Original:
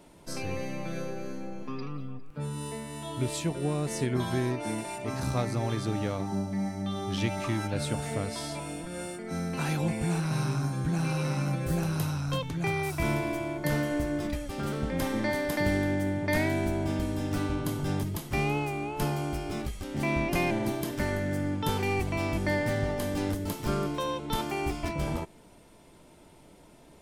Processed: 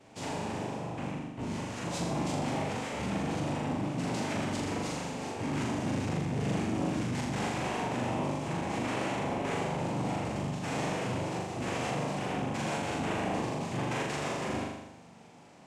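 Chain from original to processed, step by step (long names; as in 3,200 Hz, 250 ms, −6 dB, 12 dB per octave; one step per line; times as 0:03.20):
notch filter 4,800 Hz, Q 5.6
brickwall limiter −23.5 dBFS, peak gain reduction 9 dB
cochlear-implant simulation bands 4
phase-vocoder stretch with locked phases 0.58×
flutter between parallel walls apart 7 metres, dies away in 0.93 s
saturating transformer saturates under 430 Hz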